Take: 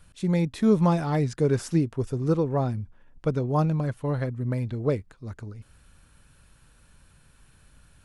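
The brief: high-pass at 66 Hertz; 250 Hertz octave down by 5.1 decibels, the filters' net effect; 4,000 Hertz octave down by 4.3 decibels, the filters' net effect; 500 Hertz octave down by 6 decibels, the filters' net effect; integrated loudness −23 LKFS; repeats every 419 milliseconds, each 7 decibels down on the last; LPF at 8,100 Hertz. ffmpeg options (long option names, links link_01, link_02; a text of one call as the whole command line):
ffmpeg -i in.wav -af "highpass=66,lowpass=8100,equalizer=frequency=250:width_type=o:gain=-7,equalizer=frequency=500:width_type=o:gain=-5,equalizer=frequency=4000:width_type=o:gain=-5,aecho=1:1:419|838|1257|1676|2095:0.447|0.201|0.0905|0.0407|0.0183,volume=6.5dB" out.wav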